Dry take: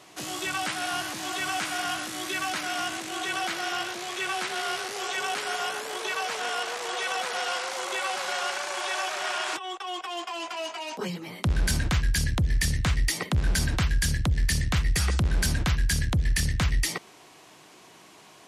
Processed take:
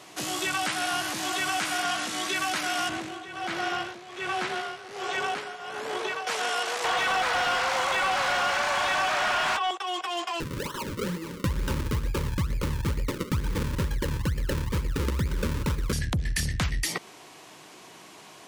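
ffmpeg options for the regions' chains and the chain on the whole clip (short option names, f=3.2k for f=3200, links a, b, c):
-filter_complex "[0:a]asettb=1/sr,asplit=3[a][b][c];[a]atrim=end=1.834[d];[b]atrim=start=1.83:end=2.36,asetpts=PTS-STARTPTS,afade=t=in:d=0.004:c=qsin,afade=t=out:st=0.526:d=0.004:c=qsin,acrossover=split=9800[e][f];[f]acompressor=threshold=-58dB:ratio=4:attack=1:release=60[g];[e][g]amix=inputs=2:normalize=0,aecho=1:1:4.4:0.46,atrim=end_sample=23373[h];[c]atrim=start=2.356[i];[d][h]acrossfade=d=0.004:c1=hsin:c2=qsin[j];[j][i]acrossfade=d=0.004:c1=qsin:c2=hsin,asettb=1/sr,asplit=3[k][l][m];[k]atrim=end=2.894[n];[l]atrim=start=2.89:end=6.27,asetpts=PTS-STARTPTS,afade=t=in:d=0.004:c=qsin,afade=t=out:st=3.376:d=0.004:c=qsin,lowpass=f=2.6k:p=1,lowshelf=f=190:g=9.5,tremolo=f=1.3:d=0.78[o];[m]atrim=start=6.266[p];[n][o]acrossfade=d=0.004:c1=hsin:c2=qsin[q];[q][p]acrossfade=d=0.004:c1=qsin:c2=hsin,asettb=1/sr,asplit=3[r][s][t];[r]atrim=end=6.844[u];[s]atrim=start=6.84:end=9.71,asetpts=PTS-STARTPTS,afade=t=in:d=0.004:c=qsin,afade=t=out:st=2.866:d=0.004:c=qsin,highpass=f=490:w=0.5412,highpass=f=490:w=1.3066,asplit=2[v][w];[w]highpass=f=720:p=1,volume=21dB,asoftclip=type=tanh:threshold=-15.5dB[x];[v][x]amix=inputs=2:normalize=0,lowpass=f=1.7k:p=1,volume=-6dB[y];[t]atrim=start=9.706[z];[u][y]acrossfade=d=0.004:c1=hsin:c2=qsin[aa];[aa][z]acrossfade=d=0.004:c1=qsin:c2=hsin,asettb=1/sr,asplit=3[ab][ac][ad];[ab]atrim=end=10.404[ae];[ac]atrim=start=10.4:end=15.93,asetpts=PTS-STARTPTS,afade=t=in:d=0.004:c=qsin,afade=t=out:st=5.526:d=0.004:c=qsin,acrusher=samples=36:mix=1:aa=0.000001:lfo=1:lforange=36:lforate=2.2,asuperstop=centerf=710:order=8:qfactor=2.5[af];[ad]atrim=start=15.926[ag];[ae][af]acrossfade=d=0.004:c1=hsin:c2=qsin[ah];[ah][ag]acrossfade=d=0.004:c1=qsin:c2=hsin,acompressor=threshold=-29dB:ratio=2,lowshelf=f=62:g=-5.5,volume=3.5dB"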